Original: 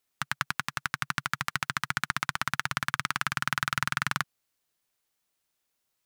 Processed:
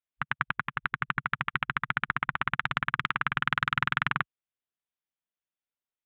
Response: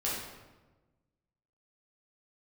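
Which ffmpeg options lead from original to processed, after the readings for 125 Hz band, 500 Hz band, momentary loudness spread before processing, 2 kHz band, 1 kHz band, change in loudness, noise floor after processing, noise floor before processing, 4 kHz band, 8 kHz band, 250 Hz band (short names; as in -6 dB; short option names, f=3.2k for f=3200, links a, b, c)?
+1.5 dB, 0.0 dB, 4 LU, +1.5 dB, +1.5 dB, +1.0 dB, under -85 dBFS, -80 dBFS, -3.0 dB, under -25 dB, +1.5 dB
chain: -af "aresample=8000,aresample=44100,afwtdn=0.01,volume=1.5dB"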